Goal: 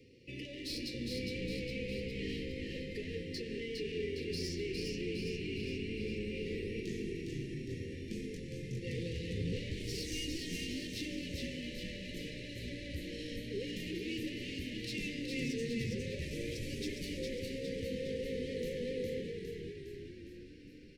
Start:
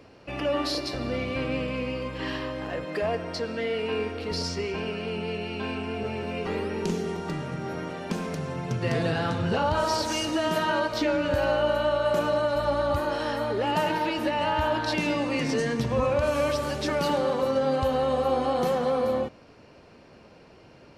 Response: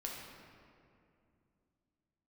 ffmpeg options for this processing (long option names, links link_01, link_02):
-filter_complex "[0:a]asettb=1/sr,asplit=3[link_01][link_02][link_03];[link_01]atrim=end=6.804[link_04];[link_02]atrim=start=6.8:end=8.87,asetpts=PTS-STARTPTS,afade=type=in:duration=0.004:curve=qsin,afade=type=out:start_time=2.066:duration=0.004:curve=qsin,flanger=delay=20:depth=5.3:speed=1.4[link_05];[link_03]atrim=start=8.866[link_06];[link_04][link_05]acrossfade=duration=0.004:curve1=hsin:curve2=qsin[link_07];[link_07][link_06]acrossfade=duration=0.004:curve1=qsin:curve2=hsin,asoftclip=type=tanh:threshold=-27.5dB,asuperstop=centerf=1000:order=20:qfactor=0.72,asplit=9[link_08][link_09][link_10][link_11][link_12][link_13][link_14][link_15][link_16];[link_09]adelay=409,afreqshift=-54,volume=-3.5dB[link_17];[link_10]adelay=818,afreqshift=-108,volume=-8.4dB[link_18];[link_11]adelay=1227,afreqshift=-162,volume=-13.3dB[link_19];[link_12]adelay=1636,afreqshift=-216,volume=-18.1dB[link_20];[link_13]adelay=2045,afreqshift=-270,volume=-23dB[link_21];[link_14]adelay=2454,afreqshift=-324,volume=-27.9dB[link_22];[link_15]adelay=2863,afreqshift=-378,volume=-32.8dB[link_23];[link_16]adelay=3272,afreqshift=-432,volume=-37.7dB[link_24];[link_08][link_17][link_18][link_19][link_20][link_21][link_22][link_23][link_24]amix=inputs=9:normalize=0,flanger=delay=7.9:depth=4.5:regen=-51:speed=0.13:shape=triangular,volume=-3dB"